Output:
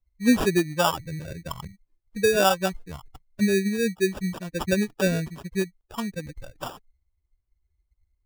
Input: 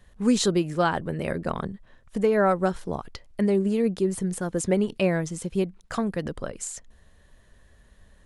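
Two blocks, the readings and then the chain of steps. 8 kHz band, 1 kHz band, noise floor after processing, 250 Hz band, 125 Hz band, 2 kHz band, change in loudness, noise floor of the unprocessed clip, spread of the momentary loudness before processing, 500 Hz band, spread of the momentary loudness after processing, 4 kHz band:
0.0 dB, +0.5 dB, -75 dBFS, -0.5 dB, -1.0 dB, +4.0 dB, +1.0 dB, -57 dBFS, 13 LU, -1.0 dB, 18 LU, +4.0 dB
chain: expander on every frequency bin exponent 2; sample-and-hold 21×; trim +3.5 dB

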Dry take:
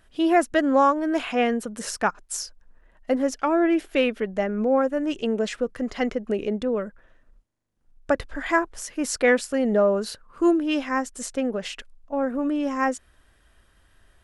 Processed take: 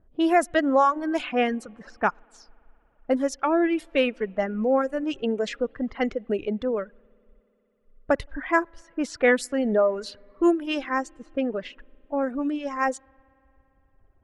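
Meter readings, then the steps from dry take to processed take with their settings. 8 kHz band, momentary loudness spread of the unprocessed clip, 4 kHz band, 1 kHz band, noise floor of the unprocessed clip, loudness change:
-8.5 dB, 11 LU, -2.0 dB, -0.5 dB, -61 dBFS, -1.0 dB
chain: level-controlled noise filter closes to 560 Hz, open at -18.5 dBFS; spring tank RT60 3.7 s, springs 56 ms, chirp 65 ms, DRR 19.5 dB; reverb removal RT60 1.6 s

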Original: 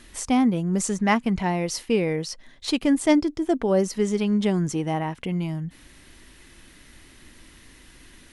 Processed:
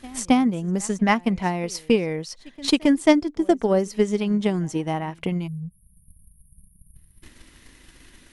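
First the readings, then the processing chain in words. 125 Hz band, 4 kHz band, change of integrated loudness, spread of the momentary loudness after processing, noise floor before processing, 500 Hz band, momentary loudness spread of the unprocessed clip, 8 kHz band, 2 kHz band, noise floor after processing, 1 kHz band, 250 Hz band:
-1.0 dB, +2.5 dB, +1.5 dB, 10 LU, -51 dBFS, +1.5 dB, 8 LU, -1.5 dB, +1.5 dB, -57 dBFS, +1.5 dB, +1.0 dB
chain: spectral selection erased 5.47–7.23 s, 210–8900 Hz; pre-echo 271 ms -21 dB; transient shaper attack +8 dB, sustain -3 dB; trim -1.5 dB

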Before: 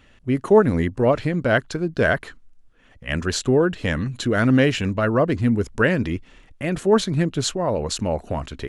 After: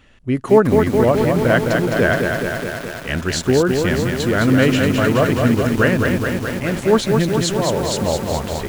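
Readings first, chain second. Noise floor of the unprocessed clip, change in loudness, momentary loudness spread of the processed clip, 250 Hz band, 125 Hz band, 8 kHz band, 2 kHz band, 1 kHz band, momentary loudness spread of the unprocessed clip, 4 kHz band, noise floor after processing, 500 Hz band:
-54 dBFS, +4.0 dB, 8 LU, +4.5 dB, +4.0 dB, +5.0 dB, +4.5 dB, +4.5 dB, 10 LU, +4.5 dB, -31 dBFS, +4.5 dB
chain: bit-crushed delay 211 ms, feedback 80%, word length 6-bit, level -4 dB; trim +2 dB

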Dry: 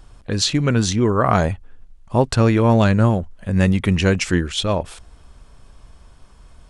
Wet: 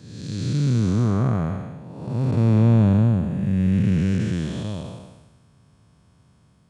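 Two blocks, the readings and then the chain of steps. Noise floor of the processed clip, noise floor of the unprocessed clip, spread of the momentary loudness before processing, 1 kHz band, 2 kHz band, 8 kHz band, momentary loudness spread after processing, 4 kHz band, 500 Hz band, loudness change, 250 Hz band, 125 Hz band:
-58 dBFS, -48 dBFS, 9 LU, -13.0 dB, -14.0 dB, under -15 dB, 16 LU, under -15 dB, -10.5 dB, -2.5 dB, -2.0 dB, 0.0 dB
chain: spectral blur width 479 ms; high-pass 110 Hz 24 dB/octave; tone controls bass +14 dB, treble +1 dB; trim -8 dB

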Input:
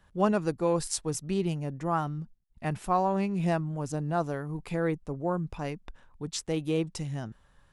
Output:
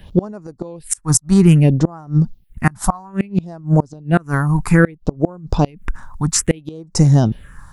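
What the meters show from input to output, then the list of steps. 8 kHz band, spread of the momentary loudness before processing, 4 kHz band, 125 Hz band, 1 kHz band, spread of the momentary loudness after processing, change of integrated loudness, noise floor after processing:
+16.5 dB, 10 LU, +10.5 dB, +17.5 dB, +5.5 dB, 12 LU, +13.5 dB, -50 dBFS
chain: phase shifter stages 4, 0.61 Hz, lowest notch 420–3100 Hz; inverted gate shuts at -23 dBFS, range -29 dB; loudness maximiser +23.5 dB; trim -1 dB

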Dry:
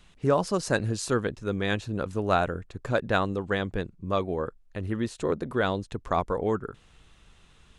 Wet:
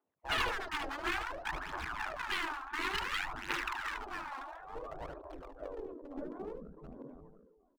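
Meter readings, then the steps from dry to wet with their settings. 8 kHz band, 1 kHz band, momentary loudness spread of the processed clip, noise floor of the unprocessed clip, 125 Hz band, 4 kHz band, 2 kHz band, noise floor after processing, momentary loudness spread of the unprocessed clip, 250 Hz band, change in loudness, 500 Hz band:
-11.5 dB, -7.5 dB, 14 LU, -58 dBFS, -22.5 dB, -2.0 dB, -3.0 dB, -71 dBFS, 8 LU, -17.0 dB, -9.5 dB, -17.5 dB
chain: backward echo that repeats 370 ms, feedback 66%, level -1 dB; gate -28 dBFS, range -20 dB; low-pass 3.8 kHz; peaking EQ 340 Hz -13 dB 0.74 oct; low-pass sweep 590 Hz -> 110 Hz, 3.75–6.22 s; in parallel at -6 dB: wavefolder -24 dBFS; on the sum: spectral gate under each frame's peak -25 dB weak; on a send: delay 75 ms -15 dB; on the sum: phaser 0.57 Hz, delay 3.8 ms, feedback 58%; decay stretcher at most 43 dB/s; trim +1.5 dB

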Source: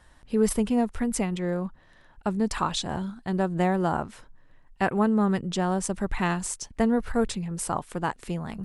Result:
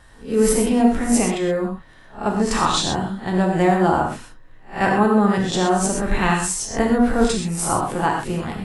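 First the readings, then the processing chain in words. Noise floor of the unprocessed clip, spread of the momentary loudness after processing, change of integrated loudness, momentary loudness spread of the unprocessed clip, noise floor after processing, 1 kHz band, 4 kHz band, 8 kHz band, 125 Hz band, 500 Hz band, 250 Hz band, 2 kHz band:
-56 dBFS, 8 LU, +7.5 dB, 8 LU, -45 dBFS, +9.0 dB, +9.5 dB, +10.0 dB, +6.0 dB, +8.0 dB, +6.5 dB, +9.0 dB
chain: reverse spectral sustain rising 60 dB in 0.30 s; gated-style reverb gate 150 ms flat, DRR 0 dB; trim +4.5 dB

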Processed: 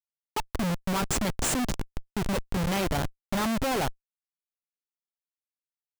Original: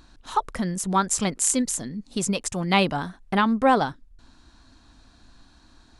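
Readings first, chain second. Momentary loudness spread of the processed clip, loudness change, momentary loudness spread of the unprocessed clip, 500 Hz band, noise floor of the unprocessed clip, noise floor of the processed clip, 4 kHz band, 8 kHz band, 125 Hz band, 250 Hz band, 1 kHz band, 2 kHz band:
8 LU, -5.5 dB, 9 LU, -5.0 dB, -56 dBFS, under -85 dBFS, -3.5 dB, -7.5 dB, -1.0 dB, -5.0 dB, -8.5 dB, -5.0 dB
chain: level-controlled noise filter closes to 750 Hz, open at -18 dBFS; Schmitt trigger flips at -26.5 dBFS

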